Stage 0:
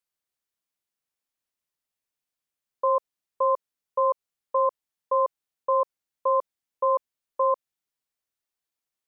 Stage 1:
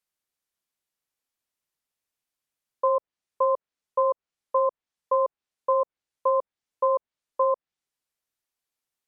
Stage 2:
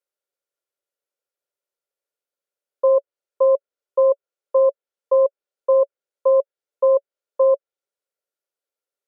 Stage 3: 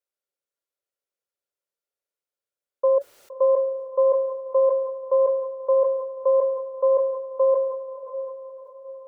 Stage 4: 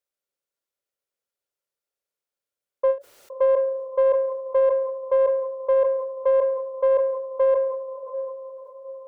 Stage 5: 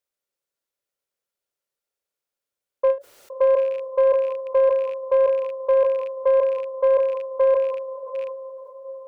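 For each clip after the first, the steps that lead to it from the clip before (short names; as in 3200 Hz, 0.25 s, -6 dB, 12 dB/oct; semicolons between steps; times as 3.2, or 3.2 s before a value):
treble ducked by the level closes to 890 Hz, closed at -19 dBFS; gain +1.5 dB
resonant high-pass 420 Hz, resonance Q 3.5; small resonant body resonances 560/1400 Hz, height 11 dB, ringing for 40 ms; gain -6.5 dB
diffused feedback echo 0.631 s, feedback 48%, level -12 dB; sustainer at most 53 dB/s; gain -3.5 dB
in parallel at -7 dB: soft clip -20 dBFS, distortion -12 dB; on the sum: ending taper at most 250 dB/s; gain -2 dB
rattling part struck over -47 dBFS, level -34 dBFS; gain +1.5 dB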